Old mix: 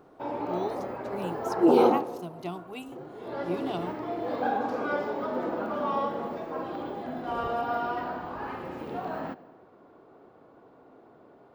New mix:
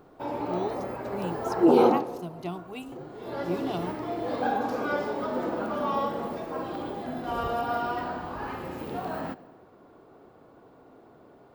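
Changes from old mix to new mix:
background: remove low-pass filter 2,900 Hz 6 dB per octave
master: add low-shelf EQ 120 Hz +8.5 dB

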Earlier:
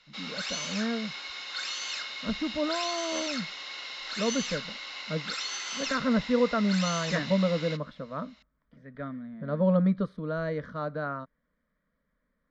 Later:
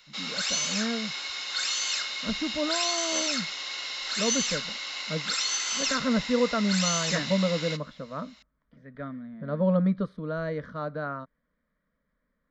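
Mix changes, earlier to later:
background: remove high-frequency loss of the air 110 metres
reverb: on, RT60 0.55 s

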